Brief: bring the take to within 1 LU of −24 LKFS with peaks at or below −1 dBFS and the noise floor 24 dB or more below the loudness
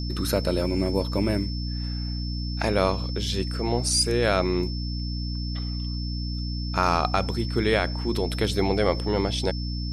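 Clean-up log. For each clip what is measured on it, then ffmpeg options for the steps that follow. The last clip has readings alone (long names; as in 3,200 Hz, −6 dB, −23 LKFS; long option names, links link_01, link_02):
mains hum 60 Hz; hum harmonics up to 300 Hz; level of the hum −27 dBFS; interfering tone 5,300 Hz; level of the tone −37 dBFS; integrated loudness −26.0 LKFS; sample peak −7.0 dBFS; target loudness −24.0 LKFS
→ -af "bandreject=frequency=60:width_type=h:width=4,bandreject=frequency=120:width_type=h:width=4,bandreject=frequency=180:width_type=h:width=4,bandreject=frequency=240:width_type=h:width=4,bandreject=frequency=300:width_type=h:width=4"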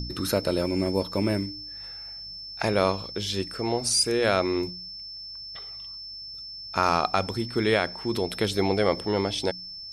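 mains hum none found; interfering tone 5,300 Hz; level of the tone −37 dBFS
→ -af "bandreject=frequency=5300:width=30"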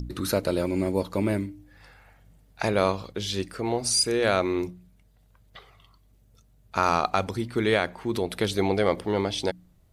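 interfering tone none found; integrated loudness −26.0 LKFS; sample peak −7.5 dBFS; target loudness −24.0 LKFS
→ -af "volume=2dB"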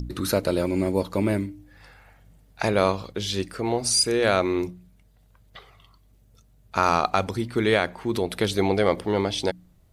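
integrated loudness −24.0 LKFS; sample peak −5.5 dBFS; background noise floor −58 dBFS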